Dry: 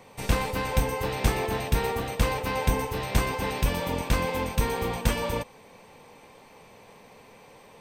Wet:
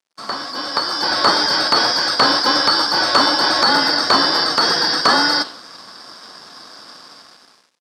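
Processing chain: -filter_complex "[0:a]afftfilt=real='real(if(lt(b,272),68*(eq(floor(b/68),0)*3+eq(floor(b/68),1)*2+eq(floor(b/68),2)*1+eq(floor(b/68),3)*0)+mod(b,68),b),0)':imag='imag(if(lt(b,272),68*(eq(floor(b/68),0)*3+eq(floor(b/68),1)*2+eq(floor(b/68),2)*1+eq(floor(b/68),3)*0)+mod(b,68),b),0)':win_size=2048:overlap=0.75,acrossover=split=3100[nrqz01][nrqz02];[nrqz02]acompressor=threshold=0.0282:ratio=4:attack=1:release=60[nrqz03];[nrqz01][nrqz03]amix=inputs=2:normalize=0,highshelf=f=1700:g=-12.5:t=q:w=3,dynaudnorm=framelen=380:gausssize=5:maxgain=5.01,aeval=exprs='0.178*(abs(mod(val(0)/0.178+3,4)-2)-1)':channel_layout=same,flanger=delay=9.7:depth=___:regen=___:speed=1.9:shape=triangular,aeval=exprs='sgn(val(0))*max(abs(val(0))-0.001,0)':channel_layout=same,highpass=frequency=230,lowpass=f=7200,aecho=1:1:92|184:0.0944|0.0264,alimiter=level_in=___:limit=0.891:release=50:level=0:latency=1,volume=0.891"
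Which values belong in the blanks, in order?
8.4, -89, 11.2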